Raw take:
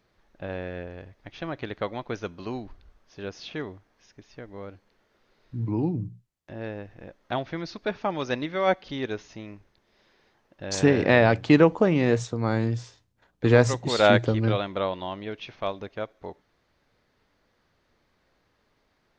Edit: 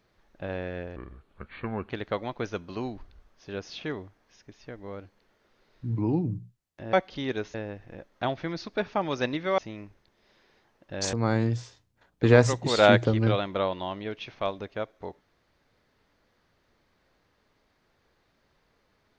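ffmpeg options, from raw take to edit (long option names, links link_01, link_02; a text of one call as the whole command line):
ffmpeg -i in.wav -filter_complex "[0:a]asplit=7[link_01][link_02][link_03][link_04][link_05][link_06][link_07];[link_01]atrim=end=0.964[link_08];[link_02]atrim=start=0.96:end=1.6,asetpts=PTS-STARTPTS,asetrate=29988,aresample=44100[link_09];[link_03]atrim=start=1.596:end=6.632[link_10];[link_04]atrim=start=8.668:end=9.282[link_11];[link_05]atrim=start=6.628:end=8.672[link_12];[link_06]atrim=start=9.278:end=10.832[link_13];[link_07]atrim=start=12.338[link_14];[link_08][link_09]acrossfade=duration=0.004:curve1=hsin:curve2=hsin[link_15];[link_15][link_10]acrossfade=duration=0.004:curve1=hsin:curve2=hsin[link_16];[link_16][link_11]acrossfade=duration=0.004:curve1=hsin:curve2=hsin[link_17];[link_17][link_12]acrossfade=duration=0.004:curve1=hsin:curve2=hsin[link_18];[link_18][link_13]acrossfade=duration=0.004:curve1=hsin:curve2=hsin[link_19];[link_19][link_14]acrossfade=duration=0.004:curve1=hsin:curve2=hsin" out.wav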